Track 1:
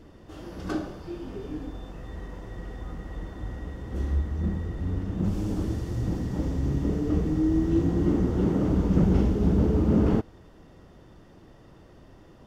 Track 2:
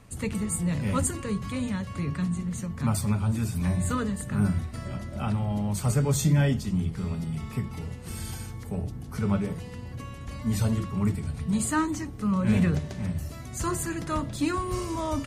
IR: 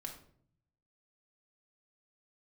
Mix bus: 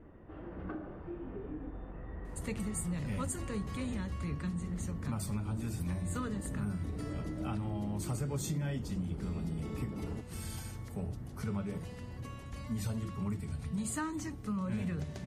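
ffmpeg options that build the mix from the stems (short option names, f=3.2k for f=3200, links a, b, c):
-filter_complex "[0:a]alimiter=limit=-21.5dB:level=0:latency=1:release=263,lowpass=f=2.2k:w=0.5412,lowpass=f=2.2k:w=1.3066,acompressor=threshold=-32dB:ratio=6,volume=-5dB[a];[1:a]adelay=2250,volume=-6dB[b];[a][b]amix=inputs=2:normalize=0,acompressor=threshold=-32dB:ratio=6"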